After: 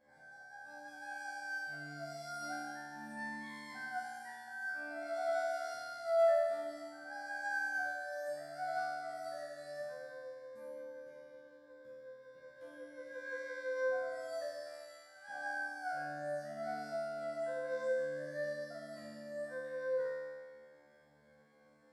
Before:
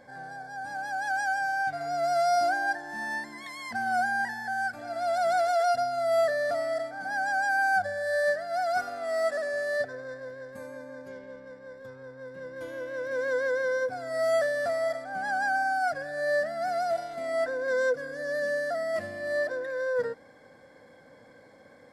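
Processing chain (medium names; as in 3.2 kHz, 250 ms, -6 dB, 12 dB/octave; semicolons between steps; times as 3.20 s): 14.62–15.28 s: amplifier tone stack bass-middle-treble 10-0-10; feedback comb 74 Hz, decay 1.7 s, harmonics all, mix 100%; trim +4 dB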